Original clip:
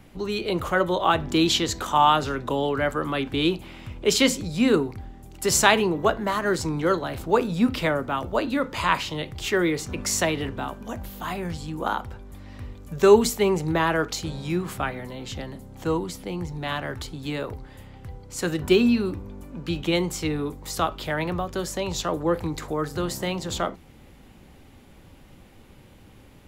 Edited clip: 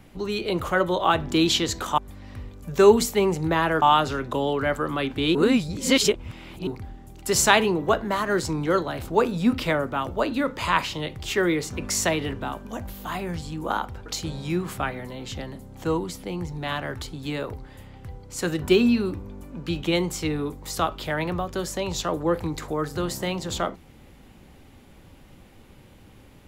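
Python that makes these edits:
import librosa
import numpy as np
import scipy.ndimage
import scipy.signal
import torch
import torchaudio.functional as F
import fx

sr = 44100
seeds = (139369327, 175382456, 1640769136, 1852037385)

y = fx.edit(x, sr, fx.reverse_span(start_s=3.51, length_s=1.32),
    fx.move(start_s=12.22, length_s=1.84, to_s=1.98), tone=tone)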